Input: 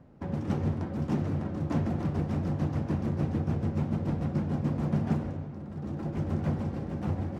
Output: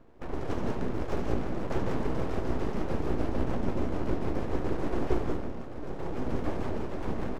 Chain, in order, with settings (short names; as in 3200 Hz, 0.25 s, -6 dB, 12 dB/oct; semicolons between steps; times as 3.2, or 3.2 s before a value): tapped delay 72/78/91/170/189/499 ms -9.5/-12/-16.5/-7/-3.5/-13 dB; full-wave rectifier